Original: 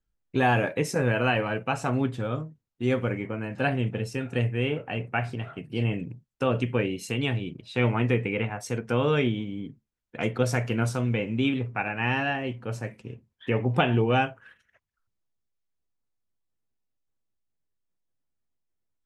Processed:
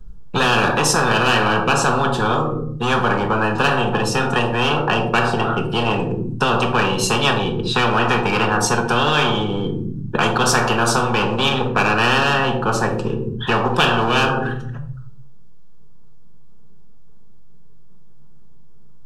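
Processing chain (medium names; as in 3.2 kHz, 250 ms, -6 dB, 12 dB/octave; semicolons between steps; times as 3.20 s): in parallel at -3.5 dB: overload inside the chain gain 29 dB; on the sum: RIAA curve playback; static phaser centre 420 Hz, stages 8; simulated room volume 770 m³, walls furnished, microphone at 1.4 m; spectrum-flattening compressor 10:1; trim -2 dB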